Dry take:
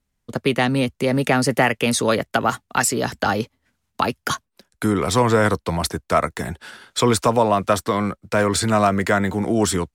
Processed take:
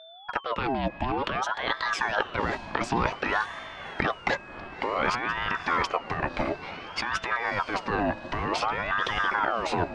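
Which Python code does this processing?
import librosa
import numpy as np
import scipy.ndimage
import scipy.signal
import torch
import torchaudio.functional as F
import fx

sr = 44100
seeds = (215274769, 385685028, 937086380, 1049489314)

p1 = scipy.signal.sosfilt(scipy.signal.bessel(4, 2800.0, 'lowpass', norm='mag', fs=sr, output='sos'), x)
p2 = fx.over_compress(p1, sr, threshold_db=-23.0, ratio=-1.0)
p3 = p2 + fx.echo_diffused(p2, sr, ms=589, feedback_pct=43, wet_db=-13.0, dry=0)
p4 = p3 + 10.0 ** (-41.0 / 20.0) * np.sin(2.0 * np.pi * 2100.0 * np.arange(len(p3)) / sr)
p5 = fx.ring_lfo(p4, sr, carrier_hz=940.0, swing_pct=55, hz=0.55)
y = F.gain(torch.from_numpy(p5), -1.5).numpy()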